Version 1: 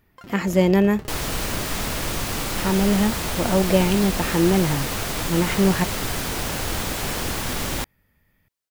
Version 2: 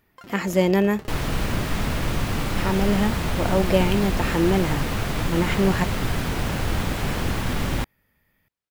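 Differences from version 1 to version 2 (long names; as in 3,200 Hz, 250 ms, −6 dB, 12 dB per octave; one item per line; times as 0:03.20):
second sound: add bass and treble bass +11 dB, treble −9 dB
master: add low-shelf EQ 190 Hz −6.5 dB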